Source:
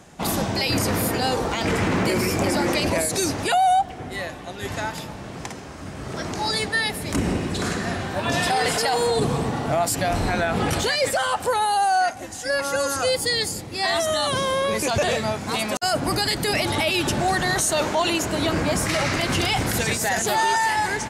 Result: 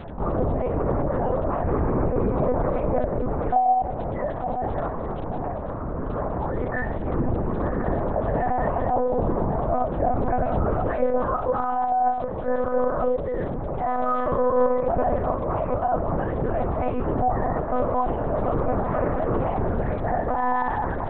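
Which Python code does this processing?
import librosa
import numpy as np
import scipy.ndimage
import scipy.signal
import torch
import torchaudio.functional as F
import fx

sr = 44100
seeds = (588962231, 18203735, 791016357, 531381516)

p1 = scipy.signal.sosfilt(scipy.signal.butter(4, 1100.0, 'lowpass', fs=sr, output='sos'), x)
p2 = p1 + 0.51 * np.pad(p1, (int(1.7 * sr / 1000.0), 0))[:len(p1)]
p3 = fx.volume_shaper(p2, sr, bpm=86, per_beat=1, depth_db=-23, release_ms=89.0, shape='fast start')
p4 = p2 + (p3 * 10.0 ** (0.5 / 20.0))
p5 = fx.comb_fb(p4, sr, f0_hz=180.0, decay_s=0.34, harmonics='all', damping=0.0, mix_pct=80)
p6 = fx.dmg_crackle(p5, sr, seeds[0], per_s=26.0, level_db=-36.0)
p7 = p6 * np.sin(2.0 * np.pi * 45.0 * np.arange(len(p6)) / sr)
p8 = p7 + fx.echo_feedback(p7, sr, ms=887, feedback_pct=47, wet_db=-18.5, dry=0)
p9 = fx.lpc_monotone(p8, sr, seeds[1], pitch_hz=250.0, order=8)
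p10 = fx.env_flatten(p9, sr, amount_pct=50)
y = p10 * 10.0 ** (1.0 / 20.0)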